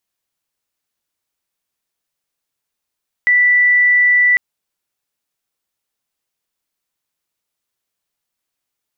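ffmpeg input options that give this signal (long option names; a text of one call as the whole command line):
ffmpeg -f lavfi -i "sine=frequency=1970:duration=1.1:sample_rate=44100,volume=9.56dB" out.wav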